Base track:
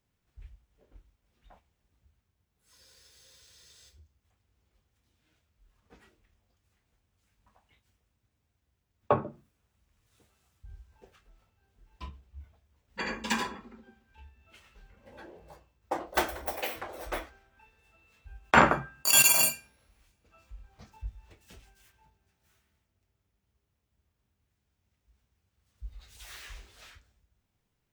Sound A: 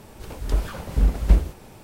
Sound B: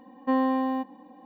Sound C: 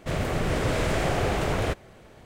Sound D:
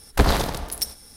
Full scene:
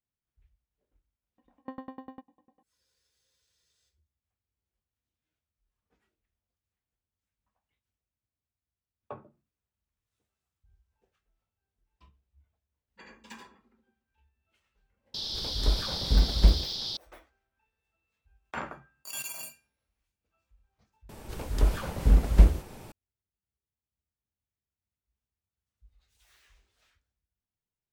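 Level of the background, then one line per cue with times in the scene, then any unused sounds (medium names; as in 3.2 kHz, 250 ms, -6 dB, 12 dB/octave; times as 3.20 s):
base track -17.5 dB
1.38 s: add B -11 dB + sawtooth tremolo in dB decaying 10 Hz, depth 30 dB
15.14 s: add A -3.5 dB + band noise 3.3–5.3 kHz -32 dBFS
21.09 s: add A -1 dB
not used: C, D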